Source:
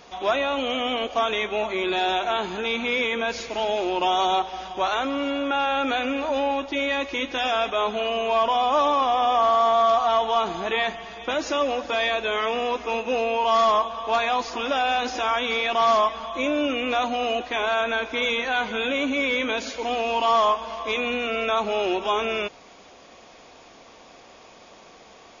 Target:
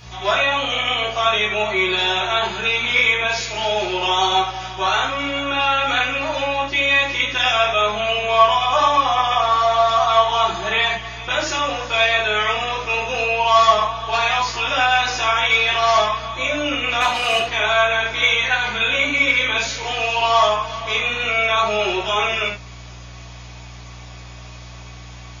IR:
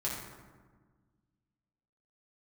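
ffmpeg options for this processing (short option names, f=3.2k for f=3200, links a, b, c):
-filter_complex "[0:a]tiltshelf=f=820:g=-8,aeval=exprs='val(0)+0.00631*(sin(2*PI*60*n/s)+sin(2*PI*2*60*n/s)/2+sin(2*PI*3*60*n/s)/3+sin(2*PI*4*60*n/s)/4+sin(2*PI*5*60*n/s)/5)':c=same,asplit=3[a][b][c];[a]afade=t=out:st=17:d=0.02[d];[b]asplit=2[e][f];[f]highpass=f=720:p=1,volume=14dB,asoftclip=type=tanh:threshold=-12dB[g];[e][g]amix=inputs=2:normalize=0,lowpass=f=5.5k:p=1,volume=-6dB,afade=t=in:st=17:d=0.02,afade=t=out:st=17.4:d=0.02[h];[c]afade=t=in:st=17.4:d=0.02[i];[d][h][i]amix=inputs=3:normalize=0[j];[1:a]atrim=start_sample=2205,atrim=end_sample=4410[k];[j][k]afir=irnorm=-1:irlink=0"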